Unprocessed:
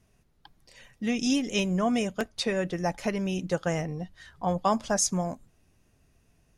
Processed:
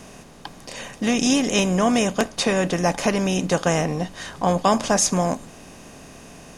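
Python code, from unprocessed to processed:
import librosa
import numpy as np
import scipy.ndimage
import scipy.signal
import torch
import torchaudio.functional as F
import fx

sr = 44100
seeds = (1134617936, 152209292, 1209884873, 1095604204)

y = fx.bin_compress(x, sr, power=0.6)
y = y * 10.0 ** (4.5 / 20.0)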